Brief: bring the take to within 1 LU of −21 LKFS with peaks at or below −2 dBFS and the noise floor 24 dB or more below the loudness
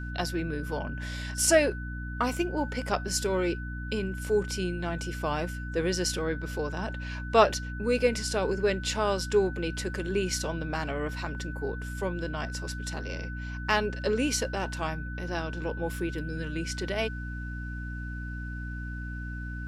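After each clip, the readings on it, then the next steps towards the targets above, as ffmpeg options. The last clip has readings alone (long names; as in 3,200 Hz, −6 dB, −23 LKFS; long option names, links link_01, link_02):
mains hum 60 Hz; hum harmonics up to 300 Hz; level of the hum −34 dBFS; interfering tone 1,500 Hz; level of the tone −41 dBFS; integrated loudness −30.5 LKFS; sample peak −6.5 dBFS; target loudness −21.0 LKFS
→ -af "bandreject=frequency=60:width_type=h:width=6,bandreject=frequency=120:width_type=h:width=6,bandreject=frequency=180:width_type=h:width=6,bandreject=frequency=240:width_type=h:width=6,bandreject=frequency=300:width_type=h:width=6"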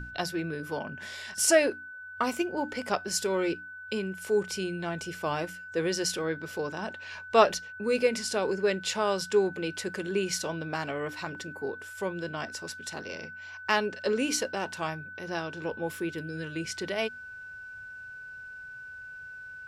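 mains hum none found; interfering tone 1,500 Hz; level of the tone −41 dBFS
→ -af "bandreject=frequency=1500:width=30"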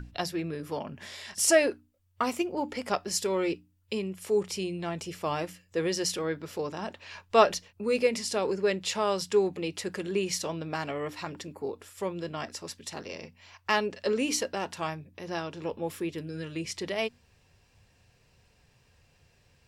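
interfering tone none found; integrated loudness −30.5 LKFS; sample peak −7.0 dBFS; target loudness −21.0 LKFS
→ -af "volume=9.5dB,alimiter=limit=-2dB:level=0:latency=1"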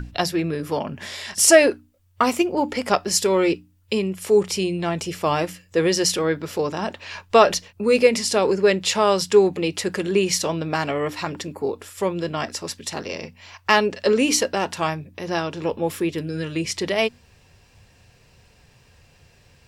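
integrated loudness −21.5 LKFS; sample peak −2.0 dBFS; background noise floor −56 dBFS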